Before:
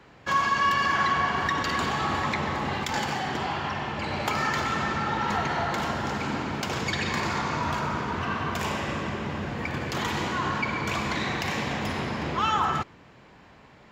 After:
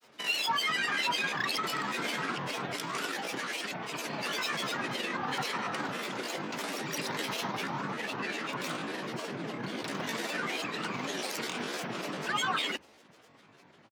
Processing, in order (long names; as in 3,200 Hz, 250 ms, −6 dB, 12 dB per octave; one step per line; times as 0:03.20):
pitch shifter +7.5 semitones
granular cloud, grains 20 per second, pitch spread up and down by 12 semitones
frequency shifter +60 Hz
level −5 dB